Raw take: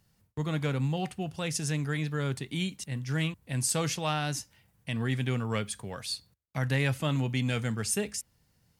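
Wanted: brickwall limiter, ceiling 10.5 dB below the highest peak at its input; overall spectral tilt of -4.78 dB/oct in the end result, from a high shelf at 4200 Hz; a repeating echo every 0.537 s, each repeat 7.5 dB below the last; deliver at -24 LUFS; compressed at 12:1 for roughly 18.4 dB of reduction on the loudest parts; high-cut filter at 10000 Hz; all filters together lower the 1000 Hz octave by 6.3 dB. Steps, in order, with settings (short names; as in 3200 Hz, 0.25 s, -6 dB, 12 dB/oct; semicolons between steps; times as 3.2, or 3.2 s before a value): LPF 10000 Hz; bell 1000 Hz -9 dB; high shelf 4200 Hz -3.5 dB; compressor 12:1, threshold -44 dBFS; limiter -39 dBFS; feedback echo 0.537 s, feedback 42%, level -7.5 dB; gain +25 dB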